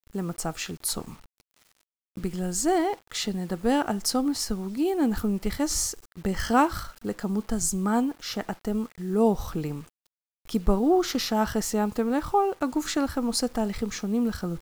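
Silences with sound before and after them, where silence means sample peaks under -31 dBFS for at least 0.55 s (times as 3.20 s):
1.09–2.17 s
9.80–10.49 s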